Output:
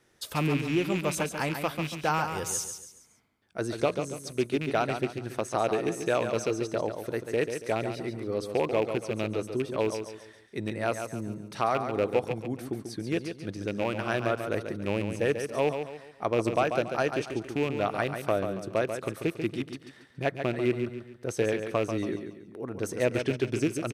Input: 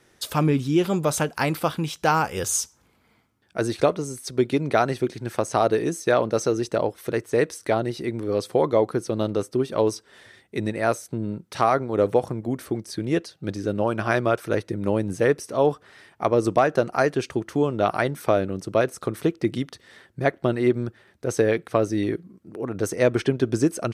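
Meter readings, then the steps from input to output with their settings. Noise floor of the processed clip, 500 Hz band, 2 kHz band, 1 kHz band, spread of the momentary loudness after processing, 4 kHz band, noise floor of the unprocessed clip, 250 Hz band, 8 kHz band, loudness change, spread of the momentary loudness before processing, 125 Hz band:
-55 dBFS, -6.0 dB, -4.0 dB, -6.0 dB, 9 LU, -3.5 dB, -62 dBFS, -6.5 dB, -6.0 dB, -6.0 dB, 8 LU, -6.5 dB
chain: rattling part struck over -27 dBFS, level -18 dBFS; feedback echo 0.14 s, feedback 37%, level -7.5 dB; gain -7 dB

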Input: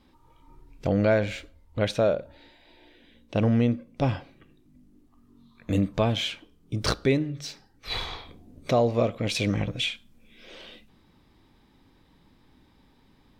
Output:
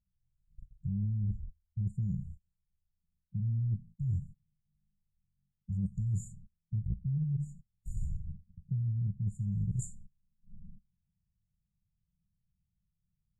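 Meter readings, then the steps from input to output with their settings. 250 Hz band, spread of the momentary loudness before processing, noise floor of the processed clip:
-13.0 dB, 19 LU, -84 dBFS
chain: in parallel at -7 dB: soft clip -25 dBFS, distortion -8 dB; on the sum: gate -43 dBFS, range -29 dB; LFO low-pass sine 0.54 Hz 540–5200 Hz; brick-wall FIR band-stop 200–6800 Hz; reverse; compressor 16:1, threshold -37 dBFS, peak gain reduction 17 dB; reverse; gain +7.5 dB

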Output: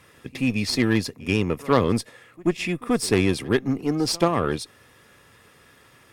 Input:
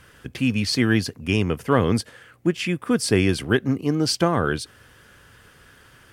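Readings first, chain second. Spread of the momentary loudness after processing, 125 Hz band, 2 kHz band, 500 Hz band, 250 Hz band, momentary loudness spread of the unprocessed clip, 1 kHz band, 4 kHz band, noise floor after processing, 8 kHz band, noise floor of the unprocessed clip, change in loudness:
7 LU, -3.0 dB, -2.5 dB, 0.0 dB, -1.0 dB, 6 LU, 0.0 dB, -2.0 dB, -55 dBFS, -1.5 dB, -53 dBFS, -1.5 dB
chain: notch comb 1500 Hz; added harmonics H 4 -18 dB, 6 -17 dB, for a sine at -5.5 dBFS; pre-echo 84 ms -23 dB

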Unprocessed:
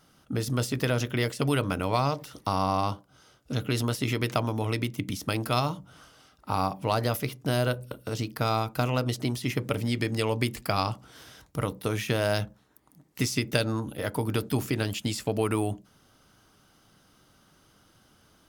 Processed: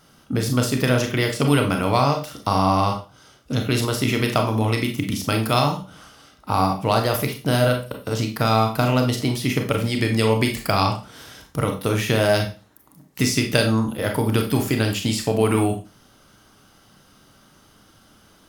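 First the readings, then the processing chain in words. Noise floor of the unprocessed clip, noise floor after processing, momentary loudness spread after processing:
-62 dBFS, -54 dBFS, 7 LU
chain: Schroeder reverb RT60 0.32 s, combs from 28 ms, DRR 3.5 dB; gain +6 dB

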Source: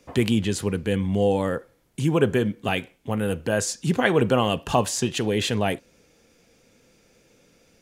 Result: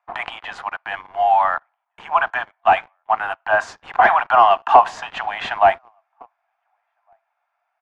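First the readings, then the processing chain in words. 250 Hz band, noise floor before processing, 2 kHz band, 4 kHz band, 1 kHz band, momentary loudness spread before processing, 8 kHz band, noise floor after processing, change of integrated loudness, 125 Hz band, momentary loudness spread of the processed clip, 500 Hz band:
-19.5 dB, -61 dBFS, +8.5 dB, -3.0 dB, +15.5 dB, 7 LU, under -15 dB, -75 dBFS, +5.5 dB, under -20 dB, 15 LU, +1.0 dB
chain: steep high-pass 680 Hz 96 dB/oct; outdoor echo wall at 250 m, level -25 dB; sample leveller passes 3; Chebyshev low-pass 1100 Hz, order 2; mismatched tape noise reduction decoder only; gain +6.5 dB

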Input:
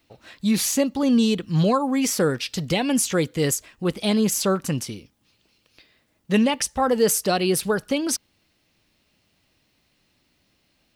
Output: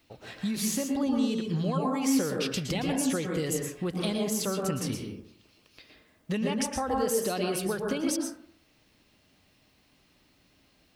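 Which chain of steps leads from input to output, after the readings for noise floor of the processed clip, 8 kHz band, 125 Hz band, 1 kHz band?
-65 dBFS, -8.0 dB, -6.5 dB, -7.0 dB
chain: compressor, threshold -29 dBFS, peak gain reduction 14 dB; plate-style reverb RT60 0.6 s, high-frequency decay 0.3×, pre-delay 0.105 s, DRR 1 dB

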